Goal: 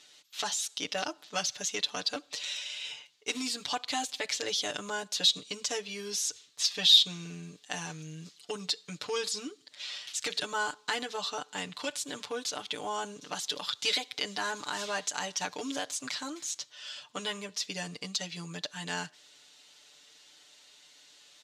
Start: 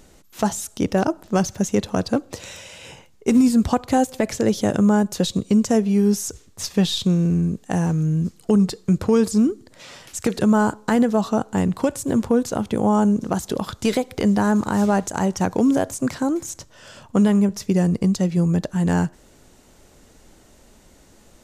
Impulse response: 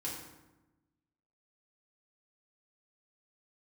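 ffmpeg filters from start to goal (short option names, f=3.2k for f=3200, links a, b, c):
-filter_complex "[0:a]bandpass=f=3.7k:t=q:w=2.1:csg=0,aecho=1:1:6.8:0.93,asplit=2[a][b];[b]asoftclip=type=tanh:threshold=-18.5dB,volume=-3dB[c];[a][c]amix=inputs=2:normalize=0"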